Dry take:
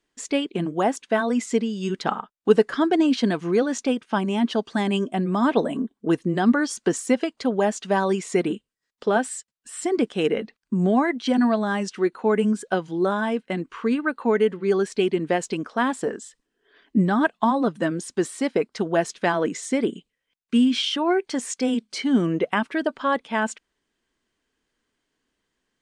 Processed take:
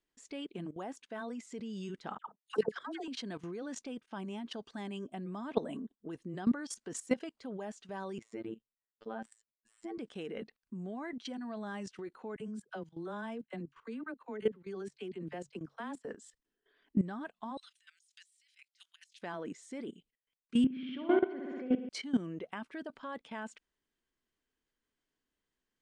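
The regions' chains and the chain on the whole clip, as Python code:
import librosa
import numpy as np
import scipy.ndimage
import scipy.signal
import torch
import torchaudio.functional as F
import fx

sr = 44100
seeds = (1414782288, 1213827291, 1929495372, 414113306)

y = fx.chain(x, sr, fx.highpass(hz=440.0, slope=6),
    fx.dispersion(late='lows', ms=96.0, hz=1200.0), at=(2.18, 3.08))
y = fx.chain(y, sr, fx.lowpass(hz=1700.0, slope=6),
    fx.robotise(hz=112.0), at=(8.18, 9.98))
y = fx.chain(y, sr, fx.peak_eq(hz=140.0, db=11.5, octaves=0.3),
    fx.dispersion(late='lows', ms=44.0, hz=600.0),
    fx.upward_expand(threshold_db=-37.0, expansion=1.5), at=(12.36, 16.05))
y = fx.chain(y, sr, fx.cheby2_highpass(hz=530.0, order=4, stop_db=70),
    fx.over_compress(threshold_db=-48.0, ratio=-1.0),
    fx.band_widen(depth_pct=40), at=(17.57, 19.21))
y = fx.chain(y, sr, fx.cabinet(low_hz=150.0, low_slope=24, high_hz=2200.0, hz=(160.0, 380.0, 930.0), db=(7, 4, -10)),
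    fx.room_flutter(wall_m=10.7, rt60_s=1.4), at=(20.64, 21.89))
y = fx.low_shelf(y, sr, hz=73.0, db=5.5)
y = fx.level_steps(y, sr, step_db=16)
y = y * librosa.db_to_amplitude(-8.5)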